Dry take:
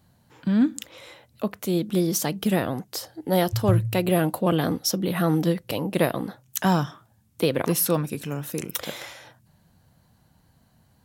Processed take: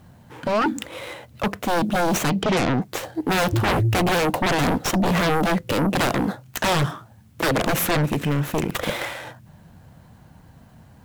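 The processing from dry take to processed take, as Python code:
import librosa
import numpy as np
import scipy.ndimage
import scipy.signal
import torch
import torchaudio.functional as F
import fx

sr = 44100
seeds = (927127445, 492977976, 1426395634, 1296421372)

y = scipy.ndimage.median_filter(x, 9, mode='constant')
y = fx.steep_lowpass(y, sr, hz=5800.0, slope=36, at=(2.3, 2.82))
y = fx.fold_sine(y, sr, drive_db=17, ceiling_db=-8.0)
y = fx.quant_dither(y, sr, seeds[0], bits=10, dither='triangular')
y = y * librosa.db_to_amplitude(-8.5)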